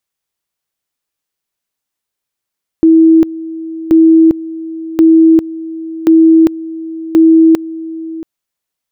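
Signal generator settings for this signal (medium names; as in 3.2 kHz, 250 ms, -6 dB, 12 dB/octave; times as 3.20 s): two-level tone 324 Hz -2.5 dBFS, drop 17.5 dB, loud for 0.40 s, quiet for 0.68 s, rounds 5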